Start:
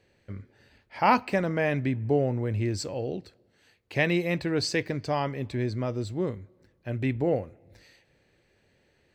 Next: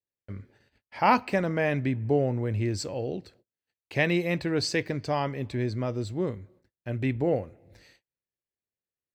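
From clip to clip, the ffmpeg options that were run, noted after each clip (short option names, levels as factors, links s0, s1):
-af "agate=range=0.0178:threshold=0.00141:ratio=16:detection=peak"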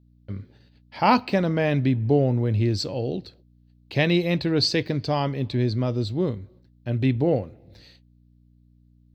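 -af "aeval=exprs='val(0)+0.001*(sin(2*PI*60*n/s)+sin(2*PI*2*60*n/s)/2+sin(2*PI*3*60*n/s)/3+sin(2*PI*4*60*n/s)/4+sin(2*PI*5*60*n/s)/5)':c=same,equalizer=f=125:t=o:w=1:g=4,equalizer=f=250:t=o:w=1:g=3,equalizer=f=2000:t=o:w=1:g=-5,equalizer=f=4000:t=o:w=1:g=11,equalizer=f=8000:t=o:w=1:g=-9,volume=1.33"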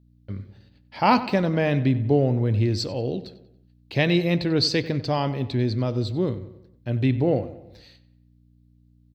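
-filter_complex "[0:a]asplit=2[s0][s1];[s1]adelay=93,lowpass=f=3600:p=1,volume=0.188,asplit=2[s2][s3];[s3]adelay=93,lowpass=f=3600:p=1,volume=0.5,asplit=2[s4][s5];[s5]adelay=93,lowpass=f=3600:p=1,volume=0.5,asplit=2[s6][s7];[s7]adelay=93,lowpass=f=3600:p=1,volume=0.5,asplit=2[s8][s9];[s9]adelay=93,lowpass=f=3600:p=1,volume=0.5[s10];[s0][s2][s4][s6][s8][s10]amix=inputs=6:normalize=0"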